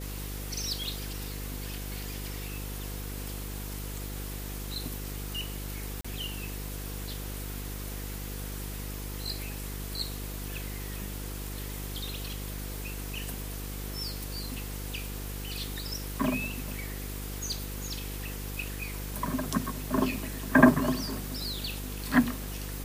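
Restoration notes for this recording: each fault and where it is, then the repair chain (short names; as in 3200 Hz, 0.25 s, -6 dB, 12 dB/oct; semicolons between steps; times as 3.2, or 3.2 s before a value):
buzz 50 Hz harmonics 10 -38 dBFS
6.01–6.04 gap 35 ms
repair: de-hum 50 Hz, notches 10; interpolate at 6.01, 35 ms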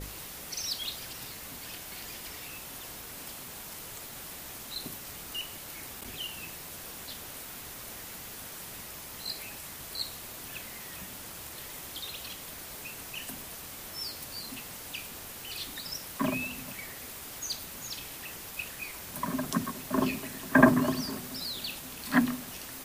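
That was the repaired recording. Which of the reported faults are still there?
none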